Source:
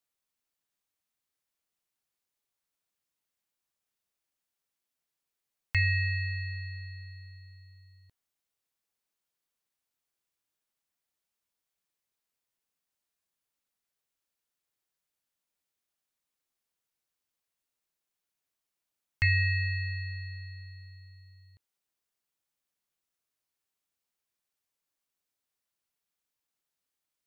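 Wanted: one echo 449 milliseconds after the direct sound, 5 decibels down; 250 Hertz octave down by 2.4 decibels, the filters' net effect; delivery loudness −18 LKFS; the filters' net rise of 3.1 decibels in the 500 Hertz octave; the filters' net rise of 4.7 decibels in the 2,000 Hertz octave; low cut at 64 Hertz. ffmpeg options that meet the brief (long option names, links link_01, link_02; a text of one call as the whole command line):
ffmpeg -i in.wav -af "highpass=64,equalizer=frequency=250:width_type=o:gain=-9,equalizer=frequency=500:width_type=o:gain=5.5,equalizer=frequency=2000:width_type=o:gain=5,aecho=1:1:449:0.562,volume=9dB" out.wav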